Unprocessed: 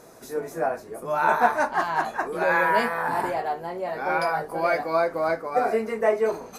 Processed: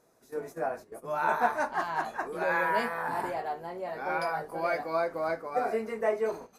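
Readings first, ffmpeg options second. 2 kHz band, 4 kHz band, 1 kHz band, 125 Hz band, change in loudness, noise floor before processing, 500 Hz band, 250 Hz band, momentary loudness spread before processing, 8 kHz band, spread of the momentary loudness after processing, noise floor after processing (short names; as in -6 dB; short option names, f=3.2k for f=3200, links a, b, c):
-6.5 dB, -6.5 dB, -6.5 dB, -6.5 dB, -6.5 dB, -44 dBFS, -6.5 dB, -6.5 dB, 10 LU, -7.5 dB, 10 LU, -60 dBFS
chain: -af "agate=range=-11dB:threshold=-36dB:ratio=16:detection=peak,volume=-6.5dB"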